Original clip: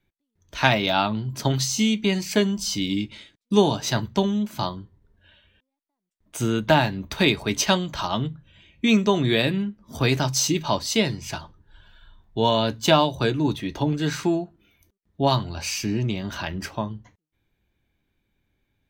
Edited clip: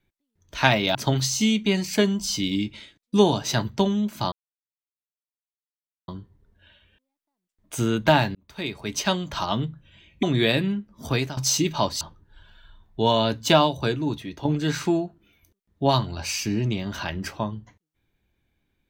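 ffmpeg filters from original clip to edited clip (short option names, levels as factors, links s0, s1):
-filter_complex "[0:a]asplit=8[s0][s1][s2][s3][s4][s5][s6][s7];[s0]atrim=end=0.952[s8];[s1]atrim=start=1.328:end=4.7,asetpts=PTS-STARTPTS,afade=t=out:st=3.368:d=0.004:c=hsin,apad=pad_dur=1.76[s9];[s2]atrim=start=4.7:end=6.97,asetpts=PTS-STARTPTS,afade=t=in:d=0.004:c=hsin,afade=t=out:st=2.266:d=0.004:c=hsin[s10];[s3]atrim=start=6.97:end=8.852,asetpts=PTS-STARTPTS,afade=t=in:d=1.07[s11];[s4]atrim=start=9.128:end=10.27,asetpts=PTS-STARTPTS,afade=t=out:st=0.832:d=0.31:silence=0.149624[s12];[s5]atrim=start=10.27:end=10.912,asetpts=PTS-STARTPTS,afade=t=in:d=0.004:c=hsin:silence=0.149624[s13];[s6]atrim=start=11.388:end=13.83,asetpts=PTS-STARTPTS,afade=t=out:st=1.572:d=0.87:silence=0.398107[s14];[s7]atrim=start=13.83,asetpts=PTS-STARTPTS,afade=t=in:d=0.004:c=hsin:silence=0.398107[s15];[s9][s10][s11]concat=n=3:v=0:a=1[s16];[s8][s16]acrossfade=d=0.004:c1=hsin:c2=hsin[s17];[s12][s13]concat=n=2:v=0:a=1[s18];[s17][s18]acrossfade=d=0.004:c1=hsin:c2=hsin[s19];[s14][s15]concat=n=2:v=0:a=1[s20];[s19][s20]acrossfade=d=0.004:c1=hsin:c2=hsin"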